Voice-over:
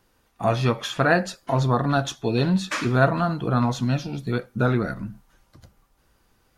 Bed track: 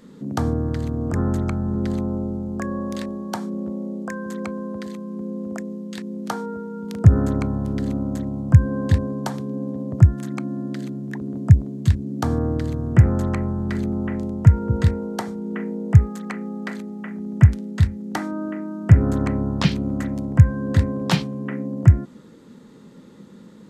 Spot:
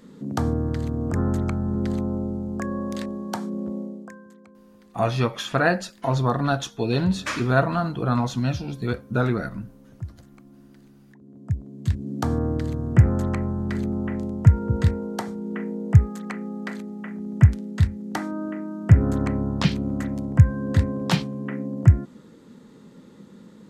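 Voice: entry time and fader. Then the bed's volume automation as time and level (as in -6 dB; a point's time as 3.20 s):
4.55 s, -1.0 dB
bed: 3.79 s -1.5 dB
4.41 s -22 dB
11.12 s -22 dB
12.09 s -2 dB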